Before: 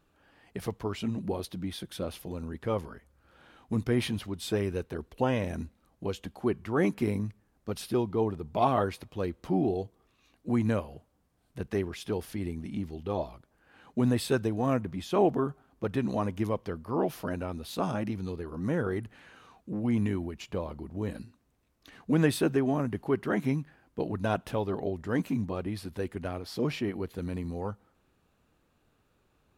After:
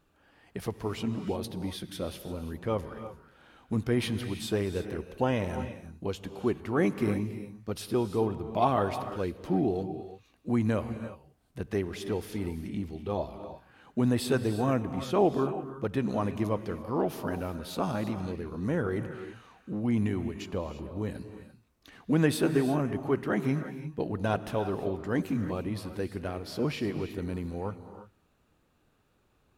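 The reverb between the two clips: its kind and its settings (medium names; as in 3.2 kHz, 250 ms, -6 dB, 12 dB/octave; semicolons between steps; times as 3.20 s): gated-style reverb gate 370 ms rising, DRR 9.5 dB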